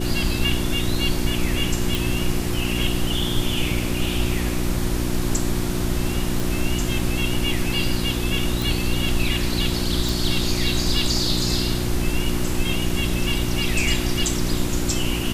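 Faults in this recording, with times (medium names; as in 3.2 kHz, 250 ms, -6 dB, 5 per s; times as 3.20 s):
hum 60 Hz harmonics 6 -26 dBFS
1.95 s: pop
6.40 s: pop
8.62 s: pop
10.09 s: pop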